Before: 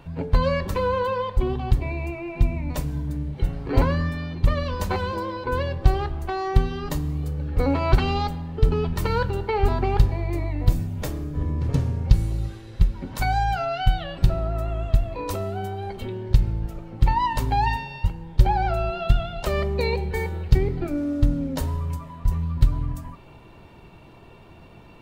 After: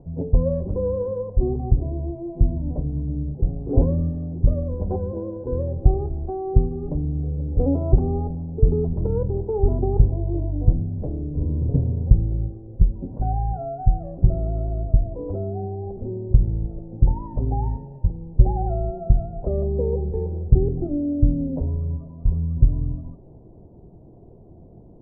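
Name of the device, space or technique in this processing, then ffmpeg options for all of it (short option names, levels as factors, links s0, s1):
under water: -af "lowpass=f=540:w=0.5412,lowpass=f=540:w=1.3066,equalizer=f=730:t=o:w=0.27:g=6.5,volume=1.26"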